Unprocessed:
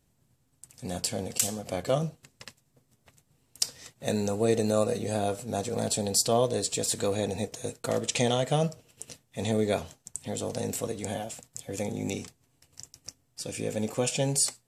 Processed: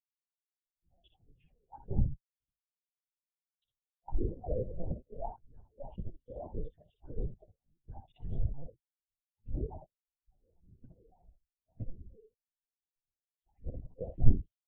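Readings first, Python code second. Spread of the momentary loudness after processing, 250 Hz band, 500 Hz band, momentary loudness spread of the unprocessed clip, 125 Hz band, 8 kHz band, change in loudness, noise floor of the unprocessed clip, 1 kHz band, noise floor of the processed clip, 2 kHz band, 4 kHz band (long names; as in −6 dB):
21 LU, −13.5 dB, −17.0 dB, 19 LU, −5.0 dB, below −40 dB, −10.0 dB, −70 dBFS, −16.5 dB, below −85 dBFS, below −40 dB, below −40 dB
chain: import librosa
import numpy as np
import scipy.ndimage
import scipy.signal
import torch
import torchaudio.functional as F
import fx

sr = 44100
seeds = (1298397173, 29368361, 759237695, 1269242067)

y = x + 0.32 * np.pad(x, (int(7.3 * sr / 1000.0), 0))[:len(x)]
y = fx.level_steps(y, sr, step_db=15)
y = fx.noise_vocoder(y, sr, seeds[0], bands=8)
y = fx.rider(y, sr, range_db=5, speed_s=2.0)
y = fx.phaser_stages(y, sr, stages=4, low_hz=160.0, high_hz=1900.0, hz=1.7, feedback_pct=45)
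y = fx.air_absorb(y, sr, metres=70.0)
y = fx.room_early_taps(y, sr, ms=(54, 69), db=(-16.0, -3.5))
y = fx.lpc_vocoder(y, sr, seeds[1], excitation='pitch_kept', order=8)
y = fx.spectral_expand(y, sr, expansion=2.5)
y = F.gain(torch.from_numpy(y), 8.5).numpy()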